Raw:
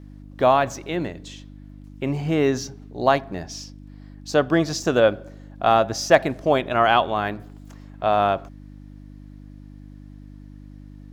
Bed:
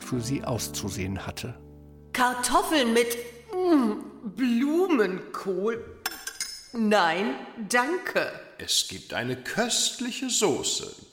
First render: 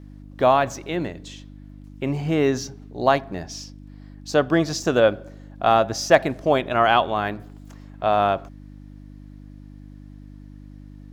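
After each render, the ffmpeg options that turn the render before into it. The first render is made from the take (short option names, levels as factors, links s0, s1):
-af anull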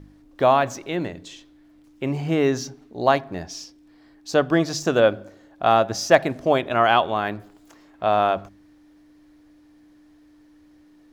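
-af "bandreject=f=50:t=h:w=4,bandreject=f=100:t=h:w=4,bandreject=f=150:t=h:w=4,bandreject=f=200:t=h:w=4,bandreject=f=250:t=h:w=4"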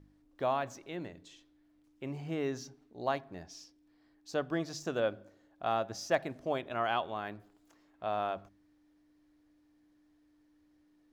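-af "volume=0.188"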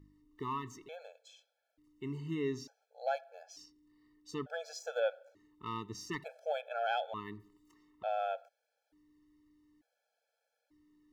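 -af "asoftclip=type=tanh:threshold=0.119,afftfilt=real='re*gt(sin(2*PI*0.56*pts/sr)*(1-2*mod(floor(b*sr/1024/440),2)),0)':imag='im*gt(sin(2*PI*0.56*pts/sr)*(1-2*mod(floor(b*sr/1024/440),2)),0)':win_size=1024:overlap=0.75"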